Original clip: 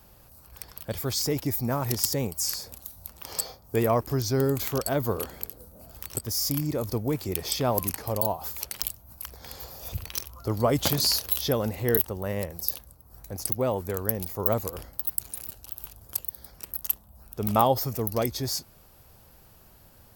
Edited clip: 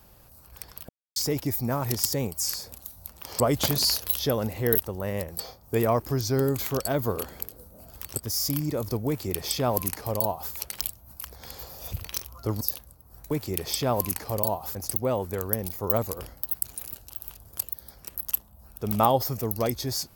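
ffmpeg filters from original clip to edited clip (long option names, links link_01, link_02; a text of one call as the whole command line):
ffmpeg -i in.wav -filter_complex "[0:a]asplit=8[link_01][link_02][link_03][link_04][link_05][link_06][link_07][link_08];[link_01]atrim=end=0.89,asetpts=PTS-STARTPTS,afade=type=out:start_time=0.886:duration=0.004:curve=hsin[link_09];[link_02]atrim=start=0.89:end=1.16,asetpts=PTS-STARTPTS,volume=0[link_10];[link_03]atrim=start=1.16:end=3.402,asetpts=PTS-STARTPTS,afade=type=in:duration=0.004:curve=hsin[link_11];[link_04]atrim=start=10.618:end=12.612[link_12];[link_05]atrim=start=3.398:end=10.622[link_13];[link_06]atrim=start=12.608:end=13.312[link_14];[link_07]atrim=start=7.088:end=8.532[link_15];[link_08]atrim=start=13.308[link_16];[link_09][link_10][link_11]concat=n=3:v=0:a=1[link_17];[link_17][link_12]acrossfade=duration=0.004:curve1=hsin:curve2=hsin[link_18];[link_18][link_13]acrossfade=duration=0.004:curve1=hsin:curve2=hsin[link_19];[link_19][link_14]acrossfade=duration=0.004:curve1=hsin:curve2=hsin[link_20];[link_20][link_15]acrossfade=duration=0.004:curve1=hsin:curve2=hsin[link_21];[link_21][link_16]acrossfade=duration=0.004:curve1=hsin:curve2=hsin" out.wav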